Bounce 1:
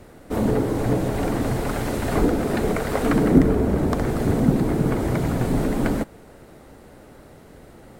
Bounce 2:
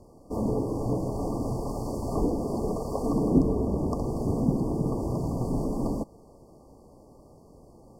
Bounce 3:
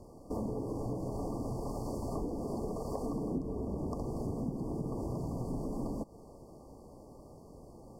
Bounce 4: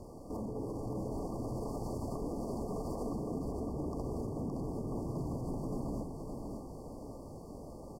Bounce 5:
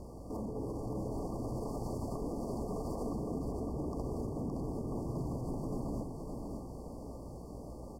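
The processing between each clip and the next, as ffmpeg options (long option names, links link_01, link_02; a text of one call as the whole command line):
ffmpeg -i in.wav -af "afftfilt=real='re*(1-between(b*sr/4096,1200,4400))':imag='im*(1-between(b*sr/4096,1200,4400))':win_size=4096:overlap=0.75,highshelf=frequency=11000:gain=-10.5,volume=-6.5dB" out.wav
ffmpeg -i in.wav -af "acompressor=threshold=-34dB:ratio=5" out.wav
ffmpeg -i in.wav -af "alimiter=level_in=11dB:limit=-24dB:level=0:latency=1:release=84,volume=-11dB,aecho=1:1:568|1136|1704|2272|2840:0.562|0.247|0.109|0.0479|0.0211,volume=3.5dB" out.wav
ffmpeg -i in.wav -af "aeval=exprs='val(0)+0.00316*(sin(2*PI*60*n/s)+sin(2*PI*2*60*n/s)/2+sin(2*PI*3*60*n/s)/3+sin(2*PI*4*60*n/s)/4+sin(2*PI*5*60*n/s)/5)':channel_layout=same" out.wav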